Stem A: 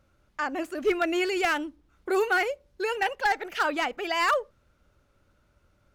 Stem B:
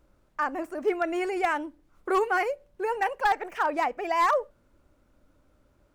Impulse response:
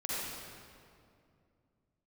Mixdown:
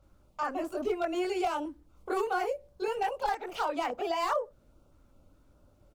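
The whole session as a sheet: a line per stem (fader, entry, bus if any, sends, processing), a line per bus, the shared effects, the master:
+1.5 dB, 0.00 s, no send, high-shelf EQ 5,100 Hz −10.5 dB; phaser with its sweep stopped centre 740 Hz, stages 4
+1.0 dB, 23 ms, polarity flipped, no send, parametric band 2,600 Hz −5.5 dB 1.9 octaves; notch on a step sequencer 4.9 Hz 630–3,000 Hz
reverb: not used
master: downward compressor 2.5 to 1, threshold −29 dBFS, peak gain reduction 7.5 dB

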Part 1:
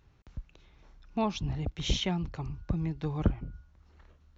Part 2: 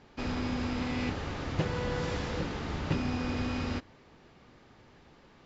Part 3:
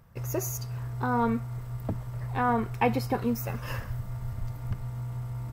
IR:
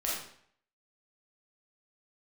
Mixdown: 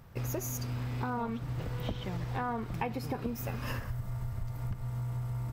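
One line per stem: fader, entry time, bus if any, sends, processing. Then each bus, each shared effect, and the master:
−4.5 dB, 0.00 s, no send, low-pass filter 2,900 Hz
−7.5 dB, 0.00 s, no send, no processing
+2.5 dB, 0.00 s, no send, no processing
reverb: not used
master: downward compressor 6 to 1, threshold −32 dBFS, peak gain reduction 15 dB

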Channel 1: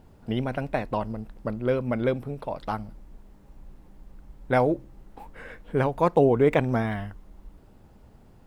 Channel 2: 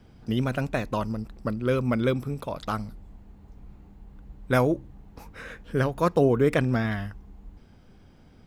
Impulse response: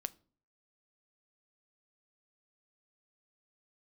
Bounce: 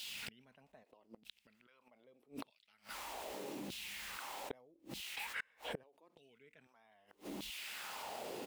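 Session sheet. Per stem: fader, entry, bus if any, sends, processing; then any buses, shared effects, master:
−18.0 dB, 0.00 s, no send, auto-filter high-pass saw down 0.81 Hz 230–3,600 Hz; high shelf with overshoot 2,000 Hz +7 dB, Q 1.5; envelope flattener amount 70%
+0.5 dB, 0.6 ms, no send, comb filter 4.6 ms, depth 49%; shaped tremolo saw up 1.2 Hz, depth 95%; automatic ducking −13 dB, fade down 1.35 s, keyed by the first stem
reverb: not used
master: high-pass filter 75 Hz 12 dB per octave; gate with flip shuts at −30 dBFS, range −32 dB

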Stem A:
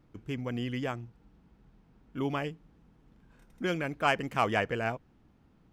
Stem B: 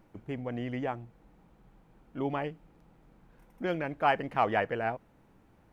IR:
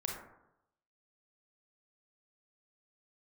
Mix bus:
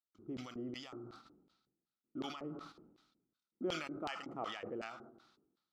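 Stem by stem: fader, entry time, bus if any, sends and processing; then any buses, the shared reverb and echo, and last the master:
+2.5 dB, 0.00 s, send −10.5 dB, downward compressor 6 to 1, threshold −36 dBFS, peak gain reduction 14.5 dB; drawn EQ curve 120 Hz 0 dB, 360 Hz +5 dB, 750 Hz −25 dB, 1,300 Hz +11 dB, 2,000 Hz −23 dB, 3,700 Hz +2 dB; automatic ducking −8 dB, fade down 0.20 s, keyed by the second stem
−7.0 dB, 0.00 s, send −15 dB, high-shelf EQ 3,800 Hz −11.5 dB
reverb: on, RT60 0.85 s, pre-delay 27 ms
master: noise gate −50 dBFS, range −23 dB; auto-filter band-pass square 2.7 Hz 400–4,100 Hz; level that may fall only so fast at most 56 dB per second

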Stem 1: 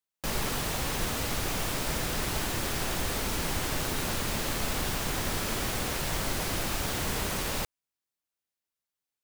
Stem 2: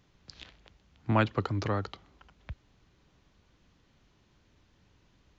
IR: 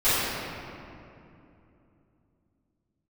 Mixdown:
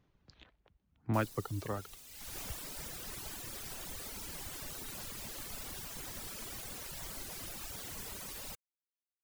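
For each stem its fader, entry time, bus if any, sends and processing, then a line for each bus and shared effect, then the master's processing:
0:02.08 −22 dB → 0:02.38 −14 dB, 0.90 s, no send, high-shelf EQ 4,600 Hz +9.5 dB
−5.0 dB, 0.00 s, no send, high-shelf EQ 2,500 Hz −10.5 dB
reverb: not used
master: reverb reduction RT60 1.5 s

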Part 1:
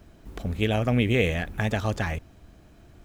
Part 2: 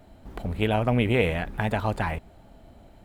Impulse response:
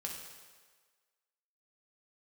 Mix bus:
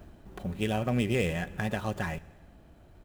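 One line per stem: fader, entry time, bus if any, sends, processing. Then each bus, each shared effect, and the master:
+2.0 dB, 0.00 s, send −20.5 dB, running median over 9 samples; high-shelf EQ 8,000 Hz +6.5 dB; notch filter 2,200 Hz, Q 18; automatic ducking −8 dB, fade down 0.30 s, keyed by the second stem
−9.5 dB, 5.7 ms, no send, brickwall limiter −20 dBFS, peak gain reduction 11 dB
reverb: on, RT60 1.5 s, pre-delay 3 ms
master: no processing

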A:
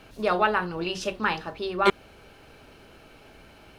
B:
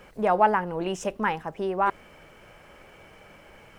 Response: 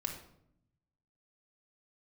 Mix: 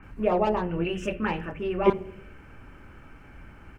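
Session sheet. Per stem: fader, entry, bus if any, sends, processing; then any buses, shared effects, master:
−0.5 dB, 0.00 s, send −7.5 dB, Butterworth low-pass 3,100 Hz 72 dB per octave; phaser swept by the level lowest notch 560 Hz, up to 1,500 Hz, full sweep at −20 dBFS; treble cut that deepens with the level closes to 1,500 Hz, closed at −25 dBFS
−9.0 dB, 28 ms, no send, soft clipping −18.5 dBFS, distortion −12 dB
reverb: on, RT60 0.70 s, pre-delay 3 ms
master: low-shelf EQ 160 Hz +6.5 dB

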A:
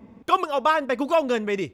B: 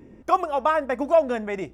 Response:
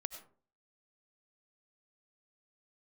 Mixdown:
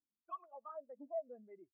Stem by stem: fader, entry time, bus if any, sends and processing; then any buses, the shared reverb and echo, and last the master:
+0.5 dB, 0.00 s, no send, three sine waves on the formant tracks; Butterworth high-pass 620 Hz 72 dB per octave; automatic ducking −20 dB, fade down 0.85 s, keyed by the second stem
−11.5 dB, 1 ms, no send, treble cut that deepens with the level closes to 2,400 Hz, closed at −16.5 dBFS; downward compressor, threshold −19 dBFS, peak gain reduction 7 dB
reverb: not used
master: soft clipping −32 dBFS, distortion −3 dB; every bin expanded away from the loudest bin 2.5 to 1

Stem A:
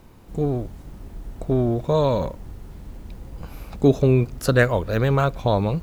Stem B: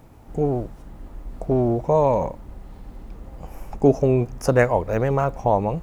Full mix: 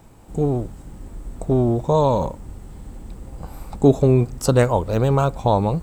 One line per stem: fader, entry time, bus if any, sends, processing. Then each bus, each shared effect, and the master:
−2.5 dB, 0.00 s, no send, parametric band 8,000 Hz +15 dB 0.32 octaves
−3.0 dB, 0.00 s, no send, parametric band 830 Hz +3 dB 0.33 octaves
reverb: not used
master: no processing

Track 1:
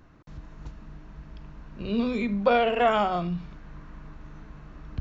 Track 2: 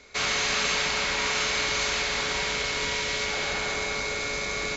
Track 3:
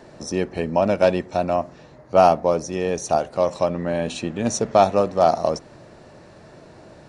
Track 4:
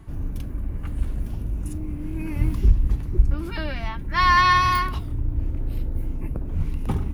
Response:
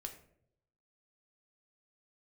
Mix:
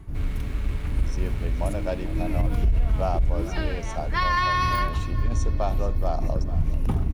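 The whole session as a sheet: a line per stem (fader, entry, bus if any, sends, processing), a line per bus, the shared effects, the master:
−19.5 dB, 0.00 s, no send, no echo send, no processing
−18.0 dB, 0.00 s, no send, no echo send, running median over 9 samples; parametric band 320 Hz +9.5 dB 1.2 octaves
−13.0 dB, 0.85 s, no send, echo send −16.5 dB, no processing
+0.5 dB, 0.00 s, no send, echo send −20.5 dB, low-shelf EQ 170 Hz +5 dB; amplitude modulation by smooth noise, depth 60%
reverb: not used
echo: repeating echo 438 ms, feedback 57%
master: brickwall limiter −13.5 dBFS, peak gain reduction 10.5 dB

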